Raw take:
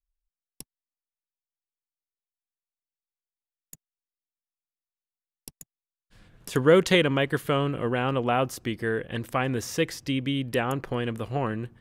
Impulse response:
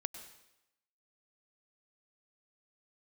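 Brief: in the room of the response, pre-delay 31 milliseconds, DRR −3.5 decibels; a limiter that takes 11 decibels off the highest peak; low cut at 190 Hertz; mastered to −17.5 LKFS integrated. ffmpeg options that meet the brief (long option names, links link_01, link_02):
-filter_complex "[0:a]highpass=190,alimiter=limit=-17dB:level=0:latency=1,asplit=2[link_01][link_02];[1:a]atrim=start_sample=2205,adelay=31[link_03];[link_02][link_03]afir=irnorm=-1:irlink=0,volume=4.5dB[link_04];[link_01][link_04]amix=inputs=2:normalize=0,volume=8dB"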